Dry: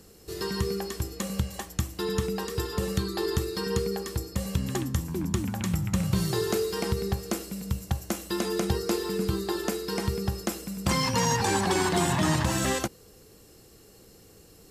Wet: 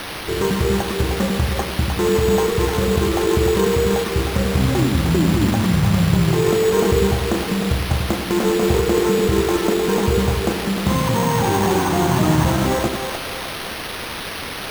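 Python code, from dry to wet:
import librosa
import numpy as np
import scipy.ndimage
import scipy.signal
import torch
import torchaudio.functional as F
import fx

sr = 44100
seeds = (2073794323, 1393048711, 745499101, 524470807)

p1 = fx.over_compress(x, sr, threshold_db=-30.0, ratio=-0.5)
p2 = x + F.gain(torch.from_numpy(p1), 1.5).numpy()
p3 = fx.quant_companded(p2, sr, bits=4)
p4 = np.convolve(p3, np.full(17, 1.0 / 17))[:len(p3)]
p5 = fx.quant_dither(p4, sr, seeds[0], bits=6, dither='triangular')
p6 = p5 + fx.echo_split(p5, sr, split_hz=440.0, low_ms=89, high_ms=307, feedback_pct=52, wet_db=-6.0, dry=0)
p7 = np.repeat(p6[::6], 6)[:len(p6)]
y = F.gain(torch.from_numpy(p7), 5.5).numpy()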